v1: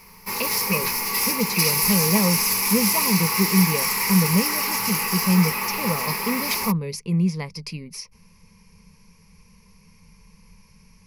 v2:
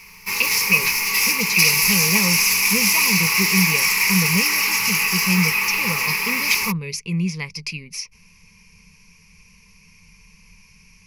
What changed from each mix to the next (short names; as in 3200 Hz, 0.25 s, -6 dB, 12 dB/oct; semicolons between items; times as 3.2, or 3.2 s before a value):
master: add fifteen-band EQ 250 Hz -5 dB, 630 Hz -10 dB, 2500 Hz +12 dB, 6300 Hz +7 dB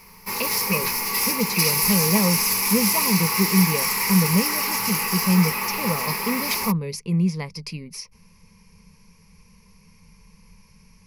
master: add fifteen-band EQ 250 Hz +5 dB, 630 Hz +10 dB, 2500 Hz -12 dB, 6300 Hz -7 dB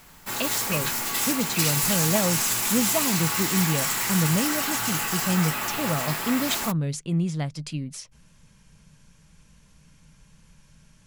master: remove ripple EQ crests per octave 0.85, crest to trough 15 dB